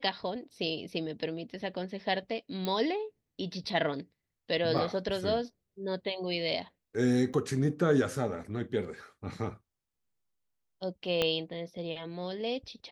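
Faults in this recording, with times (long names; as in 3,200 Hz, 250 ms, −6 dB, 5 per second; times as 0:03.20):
0:02.65: click −19 dBFS
0:04.78: drop-out 4.2 ms
0:07.33–0:07.34: drop-out 7.6 ms
0:11.22: click −14 dBFS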